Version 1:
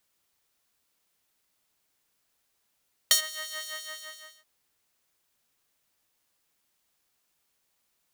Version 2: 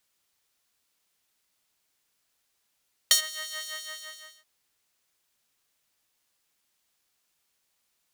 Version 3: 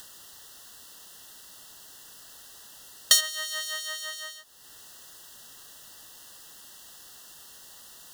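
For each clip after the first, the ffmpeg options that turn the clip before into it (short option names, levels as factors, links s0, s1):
-af "equalizer=f=4700:w=0.31:g=4,volume=0.75"
-af "asuperstop=centerf=2300:order=12:qfactor=3.4,acompressor=mode=upward:threshold=0.0251:ratio=2.5,volume=1.41"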